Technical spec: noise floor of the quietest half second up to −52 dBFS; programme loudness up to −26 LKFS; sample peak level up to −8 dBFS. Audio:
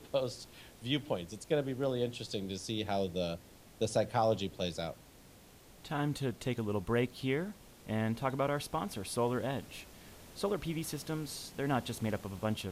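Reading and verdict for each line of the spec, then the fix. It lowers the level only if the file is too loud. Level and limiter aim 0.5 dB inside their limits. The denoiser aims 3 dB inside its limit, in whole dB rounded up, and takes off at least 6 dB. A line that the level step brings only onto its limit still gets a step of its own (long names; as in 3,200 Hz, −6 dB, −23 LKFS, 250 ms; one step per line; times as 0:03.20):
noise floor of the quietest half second −58 dBFS: in spec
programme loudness −35.5 LKFS: in spec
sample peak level −18.0 dBFS: in spec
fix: no processing needed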